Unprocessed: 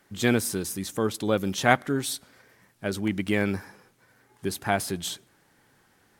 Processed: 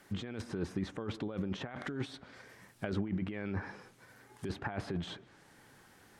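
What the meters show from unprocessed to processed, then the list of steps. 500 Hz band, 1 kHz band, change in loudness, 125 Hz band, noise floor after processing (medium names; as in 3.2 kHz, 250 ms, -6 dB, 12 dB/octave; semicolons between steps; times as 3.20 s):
-13.5 dB, -17.0 dB, -12.0 dB, -7.0 dB, -62 dBFS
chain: compressor with a negative ratio -33 dBFS, ratio -1; low-pass that closes with the level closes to 1.8 kHz, closed at -28.5 dBFS; trim -3 dB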